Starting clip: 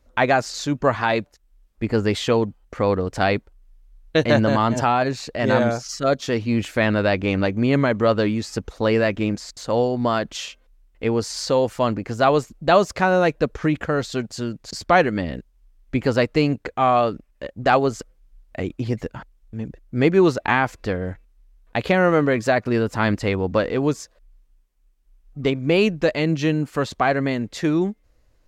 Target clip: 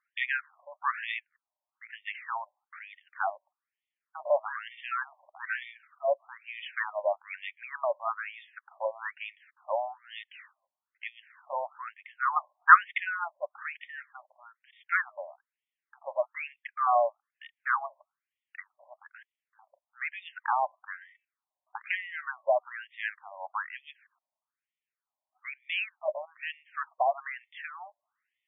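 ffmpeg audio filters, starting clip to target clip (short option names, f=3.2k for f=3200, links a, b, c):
-filter_complex "[0:a]asettb=1/sr,asplit=3[a][b][c];[a]atrim=end=12.364[d];[b]atrim=start=12.36:end=12.98,asetpts=PTS-STARTPTS,afade=t=in:d=0.004:c=qsin,afade=t=out:st=0.616:d=0.004:c=qsin,equalizer=f=1.6k:t=o:w=2.7:g=14[e];[c]atrim=start=12.976[f];[d][e]acrossfade=d=0.004:c1=hsin:c2=qsin[g];[g][f]acrossfade=d=0.004:c1=qsin:c2=hsin,afftfilt=real='re*between(b*sr/1024,760*pow(2600/760,0.5+0.5*sin(2*PI*1.1*pts/sr))/1.41,760*pow(2600/760,0.5+0.5*sin(2*PI*1.1*pts/sr))*1.41)':imag='im*between(b*sr/1024,760*pow(2600/760,0.5+0.5*sin(2*PI*1.1*pts/sr))/1.41,760*pow(2600/760,0.5+0.5*sin(2*PI*1.1*pts/sr))*1.41)':win_size=1024:overlap=0.75,volume=-4.5dB"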